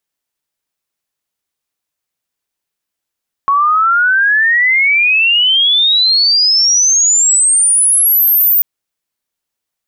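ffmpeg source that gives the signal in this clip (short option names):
-f lavfi -i "aevalsrc='pow(10,(-8+1*t/5.14)/20)*sin(2*PI*1100*5.14/log(15000/1100)*(exp(log(15000/1100)*t/5.14)-1))':d=5.14:s=44100"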